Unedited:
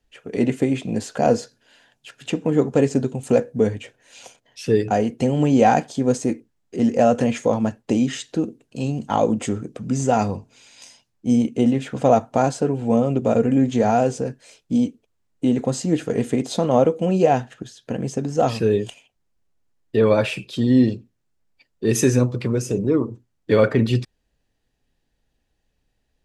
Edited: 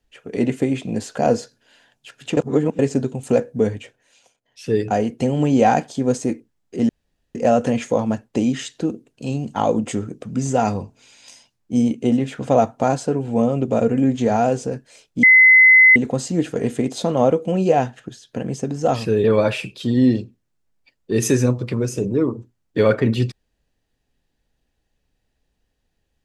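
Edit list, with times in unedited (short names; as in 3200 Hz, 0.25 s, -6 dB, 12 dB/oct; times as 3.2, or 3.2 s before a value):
2.37–2.79 reverse
3.77–4.83 dip -15 dB, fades 0.45 s linear
6.89 insert room tone 0.46 s
14.77–15.5 bleep 2040 Hz -6.5 dBFS
18.78–19.97 cut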